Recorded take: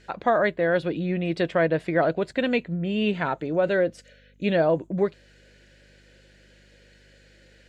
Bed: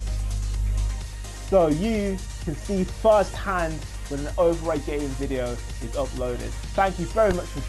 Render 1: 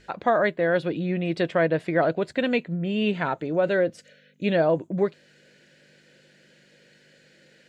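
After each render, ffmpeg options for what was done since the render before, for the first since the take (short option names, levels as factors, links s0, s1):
-af "bandreject=f=50:t=h:w=4,bandreject=f=100:t=h:w=4"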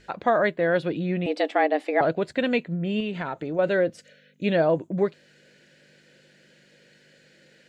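-filter_complex "[0:a]asettb=1/sr,asplit=3[s0][s1][s2];[s0]atrim=end=1.264[s3];[s1]atrim=start=1.26:end=2.01,asetpts=PTS-STARTPTS,afade=t=in:d=0.004:c=qsin,afade=t=out:st=0.746:d=0.004:c=qsin,afreqshift=140[s4];[s2]atrim=start=2.006[s5];[s3][s4]acrossfade=d=0.004:c1=hsin:c2=qsin[s6];[s6][s5]acrossfade=d=0.004:c1=qsin:c2=hsin,asettb=1/sr,asplit=3[s7][s8][s9];[s7]atrim=end=3.004[s10];[s8]atrim=start=3:end=3.59,asetpts=PTS-STARTPTS,afade=t=in:d=0.004:c=qsin,afade=t=out:st=0.586:d=0.004:c=qsin,acompressor=threshold=0.0501:ratio=4:attack=3.2:release=140:knee=1:detection=peak[s11];[s9]atrim=start=3.586[s12];[s10][s11]acrossfade=d=0.004:c1=hsin:c2=qsin[s13];[s13][s12]acrossfade=d=0.004:c1=qsin:c2=hsin"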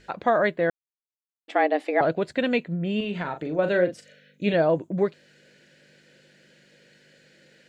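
-filter_complex "[0:a]asettb=1/sr,asplit=3[s0][s1][s2];[s0]atrim=end=2.974[s3];[s1]atrim=start=2.97:end=4.54,asetpts=PTS-STARTPTS,afade=t=in:d=0.004:c=qsin,afade=t=out:st=1.566:d=0.004:c=qsin,asplit=2[s4][s5];[s5]adelay=39,volume=0.398[s6];[s4][s6]amix=inputs=2:normalize=0,atrim=end_sample=69237[s7];[s2]atrim=start=4.536[s8];[s3][s7]acrossfade=d=0.004:c1=hsin:c2=qsin[s9];[s9][s8]acrossfade=d=0.004:c1=qsin:c2=hsin,asplit=3[s10][s11][s12];[s10]atrim=end=0.7,asetpts=PTS-STARTPTS,afade=t=out:st=0.696:d=0.004:c=hsin[s13];[s11]atrim=start=0.7:end=1.48,asetpts=PTS-STARTPTS,volume=0[s14];[s12]atrim=start=1.48,asetpts=PTS-STARTPTS,afade=t=in:d=0.004:c=hsin[s15];[s13][s14][s15]concat=n=3:v=0:a=1"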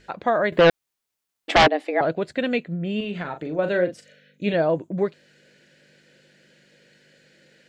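-filter_complex "[0:a]asettb=1/sr,asplit=3[s0][s1][s2];[s0]atrim=end=0.524[s3];[s1]atrim=start=0.52:end=1.68,asetpts=PTS-STARTPTS,afade=t=in:d=0.004:c=qsin,afade=t=out:st=1.156:d=0.004:c=qsin,aeval=exprs='0.316*sin(PI/2*3.16*val(0)/0.316)':c=same[s4];[s2]atrim=start=1.676[s5];[s3][s4]acrossfade=d=0.004:c1=hsin:c2=qsin[s6];[s6][s5]acrossfade=d=0.004:c1=qsin:c2=hsin,asettb=1/sr,asplit=3[s7][s8][s9];[s7]atrim=end=2.244[s10];[s8]atrim=start=2.24:end=3.3,asetpts=PTS-STARTPTS,afade=t=in:d=0.004:c=qsin,afade=t=out:st=1.056:d=0.004:c=qsin,bandreject=f=940:w=7.9[s11];[s9]atrim=start=3.296[s12];[s10][s11]acrossfade=d=0.004:c1=hsin:c2=qsin[s13];[s13][s12]acrossfade=d=0.004:c1=qsin:c2=hsin"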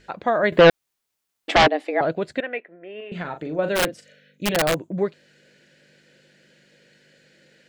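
-filter_complex "[0:a]asettb=1/sr,asplit=3[s0][s1][s2];[s0]atrim=end=2.404[s3];[s1]atrim=start=2.4:end=3.12,asetpts=PTS-STARTPTS,afade=t=in:d=0.004:c=qsin,afade=t=out:st=0.716:d=0.004:c=qsin,highpass=f=410:w=0.5412,highpass=f=410:w=1.3066,equalizer=f=500:t=q:w=4:g=-5,equalizer=f=1200:t=q:w=4:g=-6,equalizer=f=1900:t=q:w=4:g=4,lowpass=f=2200:w=0.5412,lowpass=f=2200:w=1.3066[s4];[s2]atrim=start=3.116[s5];[s3][s4]acrossfade=d=0.004:c1=hsin:c2=qsin[s6];[s6][s5]acrossfade=d=0.004:c1=qsin:c2=hsin,asplit=3[s7][s8][s9];[s7]afade=t=out:st=3.75:d=0.02[s10];[s8]aeval=exprs='(mod(5.01*val(0)+1,2)-1)/5.01':c=same,afade=t=in:st=3.75:d=0.02,afade=t=out:st=4.73:d=0.02[s11];[s9]afade=t=in:st=4.73:d=0.02[s12];[s10][s11][s12]amix=inputs=3:normalize=0,asplit=3[s13][s14][s15];[s13]atrim=end=0.432[s16];[s14]atrim=start=0.428:end=1.502,asetpts=PTS-STARTPTS,volume=1.41[s17];[s15]atrim=start=1.498[s18];[s16][s17]acrossfade=d=0.004:c1=hsin:c2=hsin[s19];[s19][s18]acrossfade=d=0.004:c1=hsin:c2=hsin"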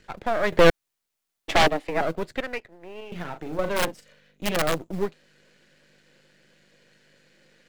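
-filter_complex "[0:a]aeval=exprs='if(lt(val(0),0),0.251*val(0),val(0))':c=same,acrossover=split=270[s0][s1];[s0]acrusher=bits=5:mode=log:mix=0:aa=0.000001[s2];[s2][s1]amix=inputs=2:normalize=0"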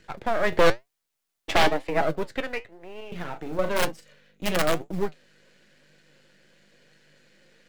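-filter_complex "[0:a]flanger=delay=6:depth=5.2:regen=71:speed=1:shape=sinusoidal,asplit=2[s0][s1];[s1]aeval=exprs='0.133*(abs(mod(val(0)/0.133+3,4)-2)-1)':c=same,volume=0.668[s2];[s0][s2]amix=inputs=2:normalize=0"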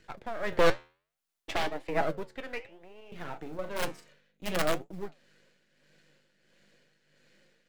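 -af "flanger=delay=2.7:depth=9.8:regen=-87:speed=0.62:shape=sinusoidal,tremolo=f=1.5:d=0.59"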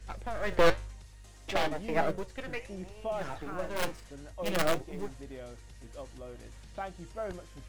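-filter_complex "[1:a]volume=0.133[s0];[0:a][s0]amix=inputs=2:normalize=0"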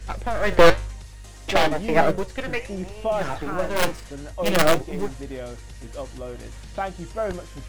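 -af "volume=3.35,alimiter=limit=0.891:level=0:latency=1"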